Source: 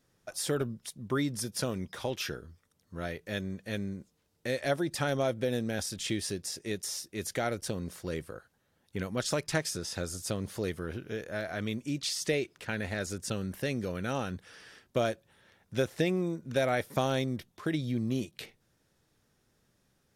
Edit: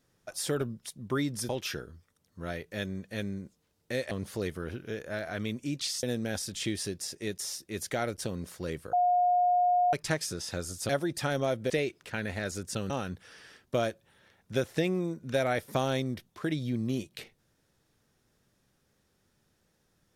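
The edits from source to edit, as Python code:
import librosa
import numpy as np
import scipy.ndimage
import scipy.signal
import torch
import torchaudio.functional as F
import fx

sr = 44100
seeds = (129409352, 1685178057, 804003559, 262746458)

y = fx.edit(x, sr, fx.cut(start_s=1.49, length_s=0.55),
    fx.swap(start_s=4.66, length_s=0.81, other_s=10.33, other_length_s=1.92),
    fx.bleep(start_s=8.37, length_s=1.0, hz=716.0, db=-21.5),
    fx.cut(start_s=13.45, length_s=0.67), tone=tone)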